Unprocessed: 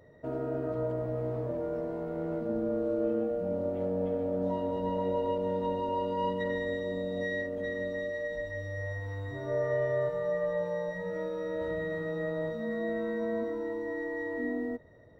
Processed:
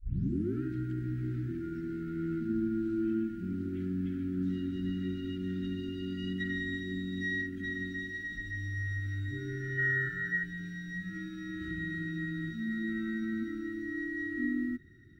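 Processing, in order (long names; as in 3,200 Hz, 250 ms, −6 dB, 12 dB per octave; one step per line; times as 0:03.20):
turntable start at the beginning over 0.62 s
gain on a spectral selection 0:09.78–0:10.43, 450–2,000 Hz +12 dB
linear-phase brick-wall band-stop 400–1,300 Hz
level +2.5 dB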